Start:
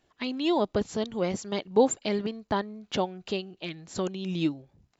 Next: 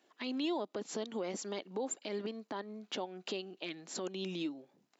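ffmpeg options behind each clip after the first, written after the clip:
-af "acompressor=threshold=-29dB:ratio=4,alimiter=level_in=3.5dB:limit=-24dB:level=0:latency=1:release=126,volume=-3.5dB,highpass=f=230:w=0.5412,highpass=f=230:w=1.3066"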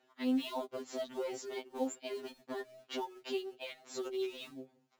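-filter_complex "[0:a]highshelf=f=5.8k:g=-10.5,asplit=2[a][b];[b]acrusher=bits=3:mode=log:mix=0:aa=0.000001,volume=-4dB[c];[a][c]amix=inputs=2:normalize=0,afftfilt=real='re*2.45*eq(mod(b,6),0)':imag='im*2.45*eq(mod(b,6),0)':win_size=2048:overlap=0.75,volume=-1.5dB"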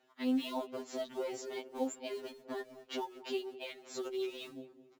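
-filter_complex "[0:a]asplit=2[a][b];[b]adelay=214,lowpass=f=1.2k:p=1,volume=-15dB,asplit=2[c][d];[d]adelay=214,lowpass=f=1.2k:p=1,volume=0.55,asplit=2[e][f];[f]adelay=214,lowpass=f=1.2k:p=1,volume=0.55,asplit=2[g][h];[h]adelay=214,lowpass=f=1.2k:p=1,volume=0.55,asplit=2[i][j];[j]adelay=214,lowpass=f=1.2k:p=1,volume=0.55[k];[a][c][e][g][i][k]amix=inputs=6:normalize=0"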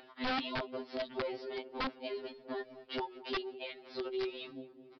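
-af "acompressor=mode=upward:threshold=-48dB:ratio=2.5,aeval=exprs='(mod(29.9*val(0)+1,2)-1)/29.9':c=same,aresample=11025,aresample=44100,volume=1dB"

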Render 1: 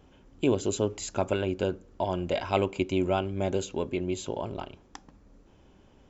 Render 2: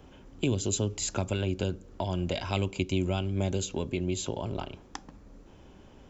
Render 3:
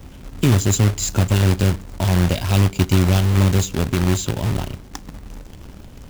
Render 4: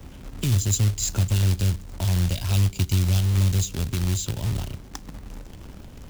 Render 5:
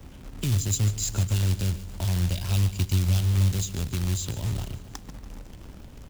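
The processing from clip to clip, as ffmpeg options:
-filter_complex "[0:a]acrossover=split=200|3000[a][b][c];[b]acompressor=threshold=-37dB:ratio=6[d];[a][d][c]amix=inputs=3:normalize=0,volume=5dB"
-af "bass=f=250:g=12,treble=f=4k:g=5,acrusher=bits=2:mode=log:mix=0:aa=0.000001,volume=4dB"
-filter_complex "[0:a]acrossover=split=140|3000[a][b][c];[b]acompressor=threshold=-34dB:ratio=3[d];[a][d][c]amix=inputs=3:normalize=0,volume=-2.5dB"
-af "aecho=1:1:144|288|432|576|720|864:0.178|0.105|0.0619|0.0365|0.0215|0.0127,volume=-3dB"

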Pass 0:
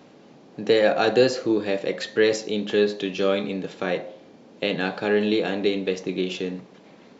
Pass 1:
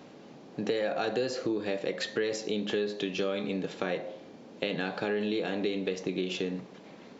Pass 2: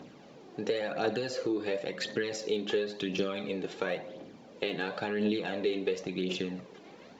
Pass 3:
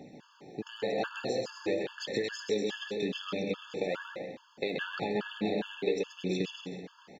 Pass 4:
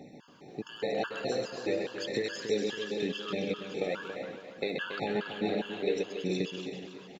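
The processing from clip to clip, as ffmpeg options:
-filter_complex "[0:a]asplit=2[a][b];[b]alimiter=limit=-15dB:level=0:latency=1:release=28,volume=-0.5dB[c];[a][c]amix=inputs=2:normalize=0,acompressor=threshold=-22dB:ratio=4,volume=-6dB"
-af "aphaser=in_gain=1:out_gain=1:delay=2.9:decay=0.49:speed=0.95:type=triangular,volume=-2dB"
-af "aecho=1:1:130|234|317.2|383.8|437:0.631|0.398|0.251|0.158|0.1,afftfilt=real='re*gt(sin(2*PI*2.4*pts/sr)*(1-2*mod(floor(b*sr/1024/880),2)),0)':imag='im*gt(sin(2*PI*2.4*pts/sr)*(1-2*mod(floor(b*sr/1024/880),2)),0)':win_size=1024:overlap=0.75"
-af "aecho=1:1:280|560|840|1120|1400:0.335|0.151|0.0678|0.0305|0.0137"

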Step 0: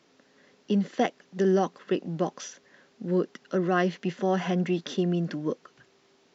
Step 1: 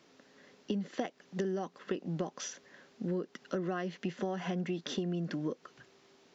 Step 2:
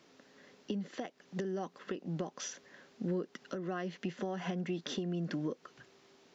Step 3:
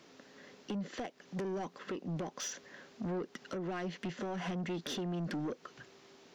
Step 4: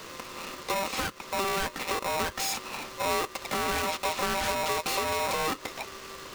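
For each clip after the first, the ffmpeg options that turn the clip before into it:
-af "acompressor=threshold=-31dB:ratio=12"
-af "alimiter=level_in=2dB:limit=-24dB:level=0:latency=1:release=324,volume=-2dB"
-af "asoftclip=type=tanh:threshold=-37dB,volume=4dB"
-af "aeval=exprs='0.0224*(cos(1*acos(clip(val(0)/0.0224,-1,1)))-cos(1*PI/2))+0.00794*(cos(5*acos(clip(val(0)/0.0224,-1,1)))-cos(5*PI/2))+0.00562*(cos(6*acos(clip(val(0)/0.0224,-1,1)))-cos(6*PI/2))':c=same,aeval=exprs='val(0)*sgn(sin(2*PI*780*n/s))':c=same,volume=7.5dB"

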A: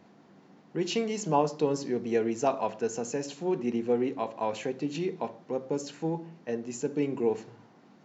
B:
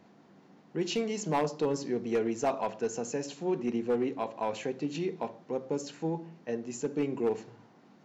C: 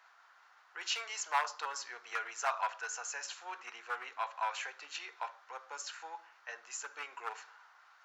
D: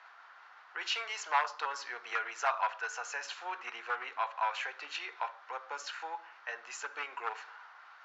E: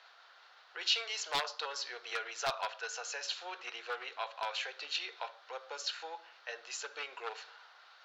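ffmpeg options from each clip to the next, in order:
-af "asoftclip=type=hard:threshold=-20.5dB,volume=-1.5dB"
-af "highpass=f=940:w=0.5412,highpass=f=940:w=1.3066,equalizer=f=1.4k:w=2.3:g=10,volume=1dB"
-filter_complex "[0:a]lowpass=3.9k,asplit=2[a][b];[b]acompressor=threshold=-47dB:ratio=6,volume=0dB[c];[a][c]amix=inputs=2:normalize=0,volume=1.5dB"
-af "aeval=exprs='0.0794*(abs(mod(val(0)/0.0794+3,4)-2)-1)':c=same,equalizer=f=250:t=o:w=1:g=-7,equalizer=f=500:t=o:w=1:g=6,equalizer=f=1k:t=o:w=1:g=-8,equalizer=f=2k:t=o:w=1:g=-5,equalizer=f=4k:t=o:w=1:g=10"

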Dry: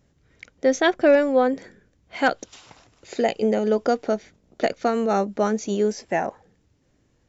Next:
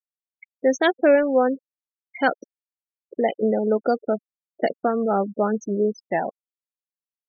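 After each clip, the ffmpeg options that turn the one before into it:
-af "afftfilt=real='re*gte(hypot(re,im),0.0708)':imag='im*gte(hypot(re,im),0.0708)':win_size=1024:overlap=0.75"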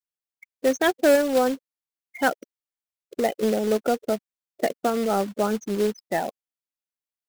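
-af "acrusher=bits=3:mode=log:mix=0:aa=0.000001,volume=-2dB"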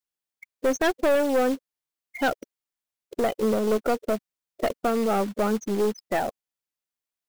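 -af "aeval=exprs='(tanh(10*val(0)+0.3)-tanh(0.3))/10':c=same,volume=3dB"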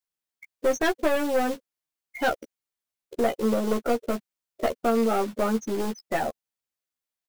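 -filter_complex "[0:a]asplit=2[a][b];[b]adelay=13,volume=-3.5dB[c];[a][c]amix=inputs=2:normalize=0,volume=-2dB"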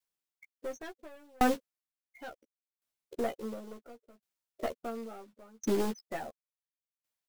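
-af "aeval=exprs='val(0)*pow(10,-38*if(lt(mod(0.71*n/s,1),2*abs(0.71)/1000),1-mod(0.71*n/s,1)/(2*abs(0.71)/1000),(mod(0.71*n/s,1)-2*abs(0.71)/1000)/(1-2*abs(0.71)/1000))/20)':c=same,volume=2.5dB"

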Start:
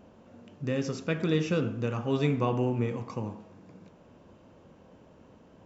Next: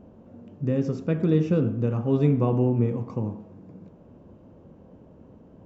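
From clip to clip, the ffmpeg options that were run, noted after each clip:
-af "tiltshelf=f=970:g=9,volume=-1.5dB"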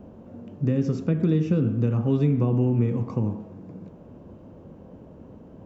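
-filter_complex "[0:a]acrossover=split=370|1200[a][b][c];[a]acompressor=threshold=-23dB:ratio=4[d];[b]acompressor=threshold=-41dB:ratio=4[e];[c]acompressor=threshold=-50dB:ratio=4[f];[d][e][f]amix=inputs=3:normalize=0,volume=4.5dB"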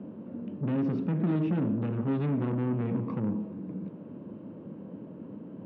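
-af "asoftclip=type=tanh:threshold=-27dB,highpass=f=120:w=0.5412,highpass=f=120:w=1.3066,equalizer=f=200:t=q:w=4:g=6,equalizer=f=300:t=q:w=4:g=6,equalizer=f=740:t=q:w=4:g=-6,lowpass=f=3.4k:w=0.5412,lowpass=f=3.4k:w=1.3066"

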